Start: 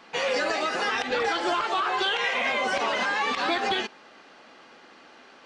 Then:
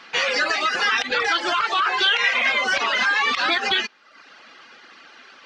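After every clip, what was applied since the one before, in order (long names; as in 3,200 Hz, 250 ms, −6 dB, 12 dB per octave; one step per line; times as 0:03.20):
reverb reduction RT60 0.75 s
flat-topped bell 2,700 Hz +9 dB 2.7 octaves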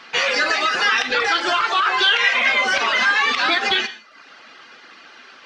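reverb whose tail is shaped and stops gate 220 ms falling, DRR 9 dB
level +2 dB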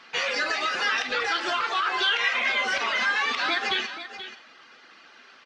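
single-tap delay 482 ms −12 dB
level −7.5 dB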